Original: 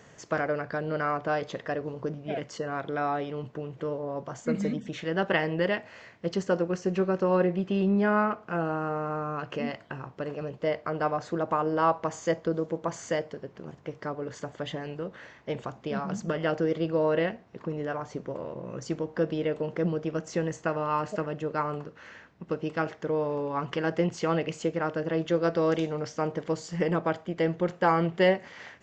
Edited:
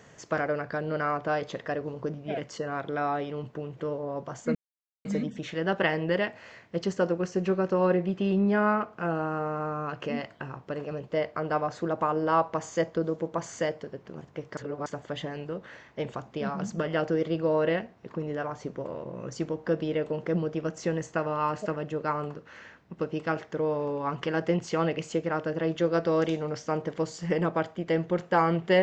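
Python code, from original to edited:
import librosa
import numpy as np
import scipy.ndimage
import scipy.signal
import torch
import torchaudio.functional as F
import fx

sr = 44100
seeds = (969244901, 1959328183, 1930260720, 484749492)

y = fx.edit(x, sr, fx.insert_silence(at_s=4.55, length_s=0.5),
    fx.reverse_span(start_s=14.07, length_s=0.29), tone=tone)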